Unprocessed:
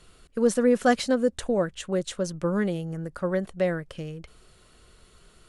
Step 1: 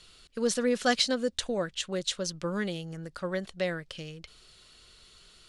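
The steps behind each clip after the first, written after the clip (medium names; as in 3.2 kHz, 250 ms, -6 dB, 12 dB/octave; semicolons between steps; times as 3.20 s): peaking EQ 4.2 kHz +15 dB 2 oct; trim -7 dB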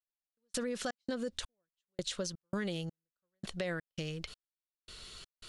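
trance gate "...xx.xx" 83 bpm -60 dB; peak limiter -25 dBFS, peak gain reduction 11 dB; compression 3:1, threshold -42 dBFS, peak gain reduction 9.5 dB; trim +6 dB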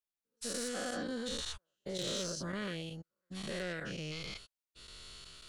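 every event in the spectrogram widened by 240 ms; saturation -20.5 dBFS, distortion -21 dB; trim -7 dB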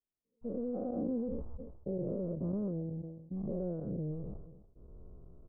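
Gaussian low-pass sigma 14 samples; echo from a far wall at 49 m, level -28 dB; decay stretcher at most 55 dB/s; trim +6.5 dB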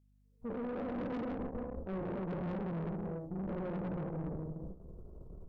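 gated-style reverb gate 490 ms flat, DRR -1 dB; valve stage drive 39 dB, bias 0.7; hum 50 Hz, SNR 29 dB; trim +3.5 dB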